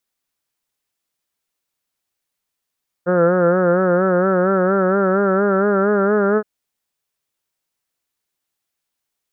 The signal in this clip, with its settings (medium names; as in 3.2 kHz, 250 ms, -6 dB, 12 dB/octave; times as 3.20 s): formant-synthesis vowel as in heard, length 3.37 s, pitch 174 Hz, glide +3 st, vibrato 4.3 Hz, vibrato depth 0.7 st